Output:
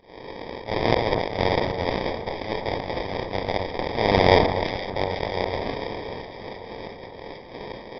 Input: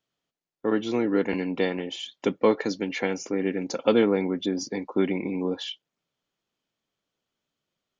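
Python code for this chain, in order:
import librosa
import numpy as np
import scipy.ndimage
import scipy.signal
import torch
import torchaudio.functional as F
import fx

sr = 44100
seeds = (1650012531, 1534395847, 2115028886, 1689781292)

p1 = fx.bin_compress(x, sr, power=0.2)
p2 = fx.cheby_harmonics(p1, sr, harmonics=(2, 3, 6, 8), levels_db=(-10, -14, -8, -18), full_scale_db=-1.5)
p3 = fx.level_steps(p2, sr, step_db=11)
p4 = p2 + (p3 * librosa.db_to_amplitude(-3.0))
p5 = fx.auto_swell(p4, sr, attack_ms=324.0)
p6 = fx.low_shelf_res(p5, sr, hz=340.0, db=-6.0, q=1.5)
p7 = fx.sample_hold(p6, sr, seeds[0], rate_hz=1400.0, jitter_pct=0)
p8 = fx.brickwall_lowpass(p7, sr, high_hz=5800.0)
p9 = p8 + fx.echo_alternate(p8, sr, ms=253, hz=1700.0, feedback_pct=78, wet_db=-11.5, dry=0)
p10 = fx.sustainer(p9, sr, db_per_s=65.0)
y = p10 * librosa.db_to_amplitude(-2.5)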